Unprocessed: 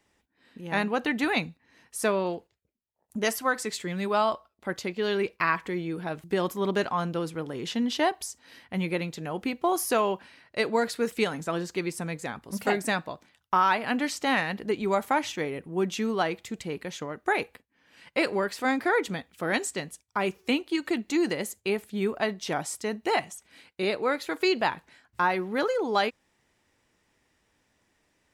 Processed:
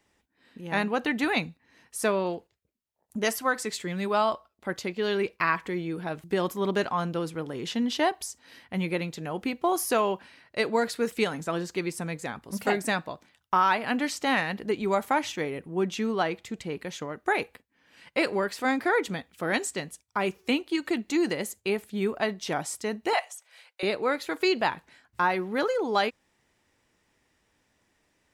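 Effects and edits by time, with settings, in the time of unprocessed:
15.72–16.79 high shelf 7300 Hz -6 dB
23.13–23.83 steep high-pass 500 Hz 48 dB/oct

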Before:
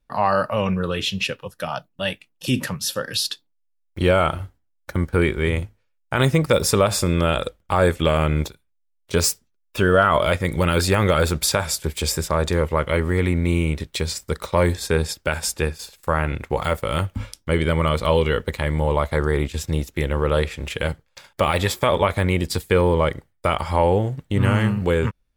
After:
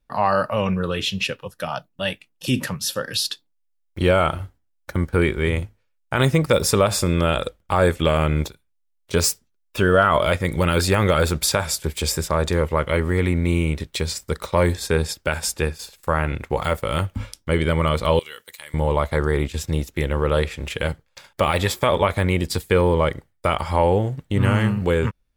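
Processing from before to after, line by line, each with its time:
18.19–18.74 differentiator

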